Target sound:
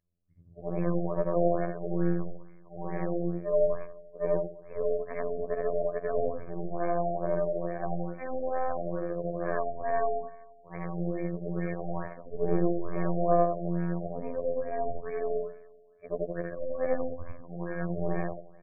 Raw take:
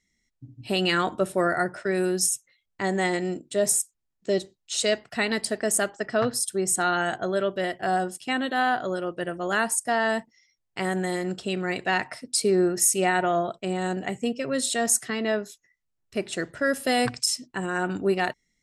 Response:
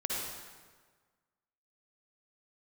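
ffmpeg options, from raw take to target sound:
-filter_complex "[0:a]afftfilt=real='re':imag='-im':win_size=8192:overlap=0.75,aeval=exprs='(tanh(12.6*val(0)+0.8)-tanh(0.8))/12.6':channel_layout=same,adynamicequalizer=threshold=0.00126:dfrequency=3100:dqfactor=5.6:tfrequency=3100:tqfactor=5.6:attack=5:release=100:ratio=0.375:range=3.5:mode=cutabove:tftype=bell,acrossover=split=230|1000|4700[link_01][link_02][link_03][link_04];[link_03]acompressor=threshold=-55dB:ratio=4[link_05];[link_01][link_02][link_05][link_04]amix=inputs=4:normalize=0,aecho=1:1:1.8:0.95,aecho=1:1:174|348|522|696:0.1|0.053|0.0281|0.0149,afftfilt=real='hypot(re,im)*cos(PI*b)':imag='0':win_size=2048:overlap=0.75,afftfilt=real='re*lt(b*sr/1024,750*pow(2600/750,0.5+0.5*sin(2*PI*2.3*pts/sr)))':imag='im*lt(b*sr/1024,750*pow(2600/750,0.5+0.5*sin(2*PI*2.3*pts/sr)))':win_size=1024:overlap=0.75,volume=7.5dB"

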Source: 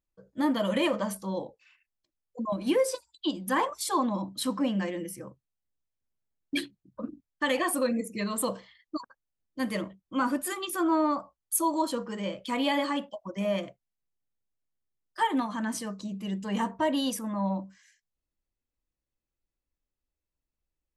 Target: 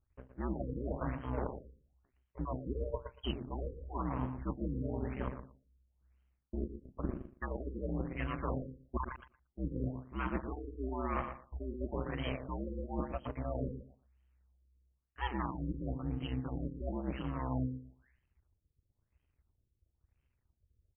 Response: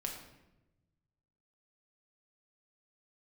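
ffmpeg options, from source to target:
-filter_complex "[0:a]aeval=exprs='if(lt(val(0),0),0.251*val(0),val(0))':channel_layout=same,equalizer=frequency=500:width_type=o:width=2.4:gain=-7,bandreject=frequency=50:width_type=h:width=6,bandreject=frequency=100:width_type=h:width=6,bandreject=frequency=150:width_type=h:width=6,bandreject=frequency=200:width_type=h:width=6,acrossover=split=5700[link_01][link_02];[link_01]acontrast=32[link_03];[link_02]aeval=exprs='clip(val(0),-1,0.0251)':channel_layout=same[link_04];[link_03][link_04]amix=inputs=2:normalize=0,aeval=exprs='val(0)*sin(2*PI*64*n/s)':channel_layout=same,areverse,acompressor=threshold=-43dB:ratio=16,areverse,aecho=1:1:117|234|351:0.355|0.0603|0.0103,afftfilt=real='re*lt(b*sr/1024,520*pow(3300/520,0.5+0.5*sin(2*PI*1*pts/sr)))':imag='im*lt(b*sr/1024,520*pow(3300/520,0.5+0.5*sin(2*PI*1*pts/sr)))':win_size=1024:overlap=0.75,volume=12dB"

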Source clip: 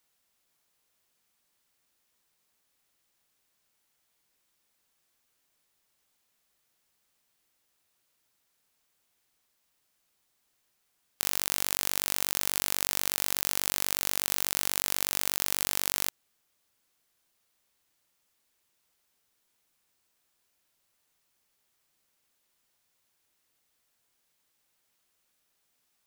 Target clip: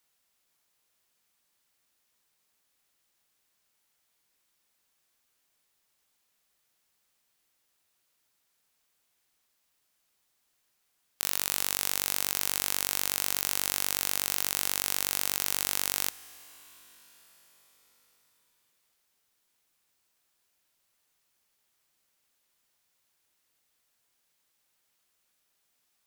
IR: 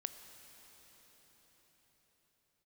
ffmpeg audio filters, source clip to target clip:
-filter_complex "[0:a]asplit=2[link_01][link_02];[link_02]lowshelf=frequency=430:gain=-11.5[link_03];[1:a]atrim=start_sample=2205,asetrate=38367,aresample=44100[link_04];[link_03][link_04]afir=irnorm=-1:irlink=0,volume=-3.5dB[link_05];[link_01][link_05]amix=inputs=2:normalize=0,volume=-3.5dB"

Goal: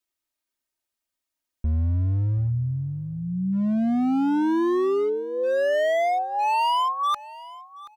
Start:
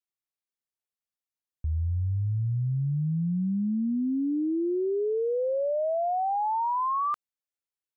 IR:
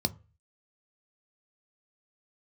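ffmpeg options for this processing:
-filter_complex "[0:a]aecho=1:1:3.2:0.74,asoftclip=type=hard:threshold=-27dB,asplit=2[link_01][link_02];[link_02]aecho=0:1:729|1458:0.112|0.0292[link_03];[link_01][link_03]amix=inputs=2:normalize=0,volume=6.5dB"

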